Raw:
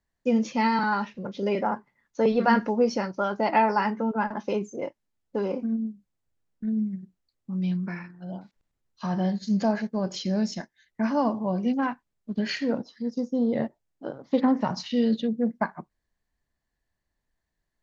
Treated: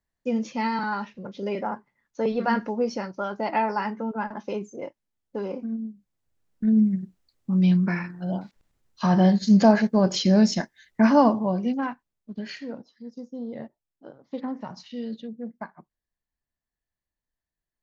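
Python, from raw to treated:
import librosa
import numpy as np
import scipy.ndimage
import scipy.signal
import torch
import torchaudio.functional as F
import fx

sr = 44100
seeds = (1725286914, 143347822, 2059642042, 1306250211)

y = fx.gain(x, sr, db=fx.line((5.85, -3.0), (6.76, 8.0), (11.15, 8.0), (11.64, 0.0), (12.8, -10.0)))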